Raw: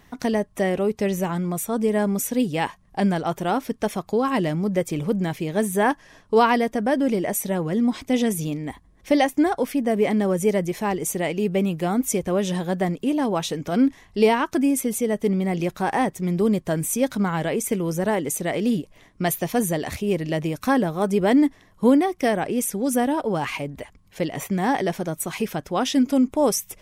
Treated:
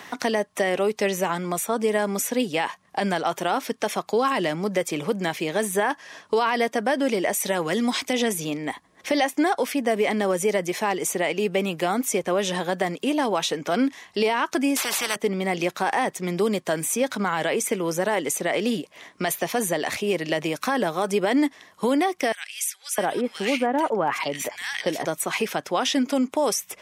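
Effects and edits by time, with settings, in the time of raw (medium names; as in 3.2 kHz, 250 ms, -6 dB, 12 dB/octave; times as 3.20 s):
7.40–8.13 s: treble shelf 2.2 kHz +9.5 dB
14.76–15.16 s: spectrum-flattening compressor 4:1
22.32–25.05 s: bands offset in time highs, lows 660 ms, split 2 kHz
whole clip: frequency weighting A; peak limiter -17 dBFS; three bands compressed up and down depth 40%; trim +4.5 dB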